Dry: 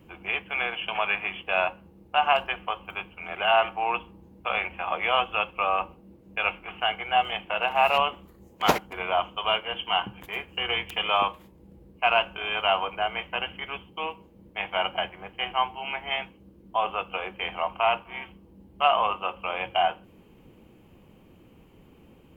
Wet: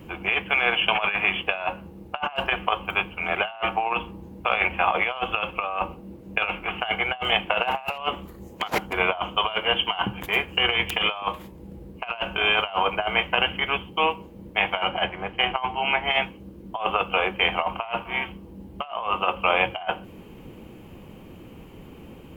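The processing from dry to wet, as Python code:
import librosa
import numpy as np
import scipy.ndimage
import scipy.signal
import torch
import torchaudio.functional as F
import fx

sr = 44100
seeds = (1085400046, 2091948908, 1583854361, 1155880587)

y = fx.high_shelf(x, sr, hz=7500.0, db=-10.5, at=(14.84, 16.05))
y = fx.over_compress(y, sr, threshold_db=-29.0, ratio=-0.5)
y = y * 10.0 ** (6.0 / 20.0)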